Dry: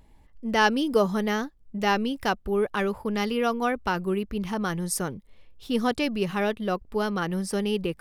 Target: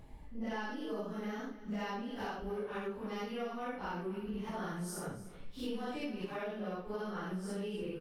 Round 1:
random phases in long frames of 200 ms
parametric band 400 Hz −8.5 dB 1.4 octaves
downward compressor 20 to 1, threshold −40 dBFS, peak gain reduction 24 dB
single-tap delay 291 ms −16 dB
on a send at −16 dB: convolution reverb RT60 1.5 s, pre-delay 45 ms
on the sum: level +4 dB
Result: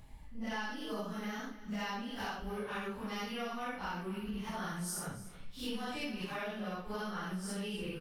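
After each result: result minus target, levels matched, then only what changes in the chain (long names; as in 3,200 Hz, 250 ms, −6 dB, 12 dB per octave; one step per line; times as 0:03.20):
8,000 Hz band +6.0 dB; 500 Hz band −3.5 dB
add after downward compressor: high-shelf EQ 3,000 Hz −5.5 dB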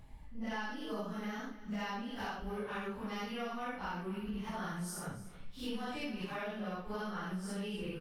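500 Hz band −3.0 dB
remove: parametric band 400 Hz −8.5 dB 1.4 octaves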